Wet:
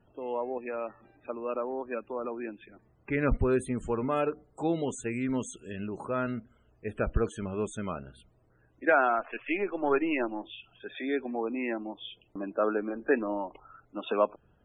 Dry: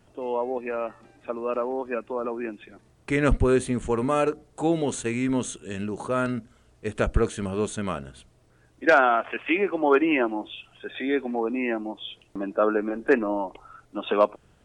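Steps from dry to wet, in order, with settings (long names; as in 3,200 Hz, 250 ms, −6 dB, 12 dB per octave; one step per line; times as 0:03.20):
0:09.19–0:10.48: gain on one half-wave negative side −3 dB
spectral peaks only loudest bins 64
level −5.5 dB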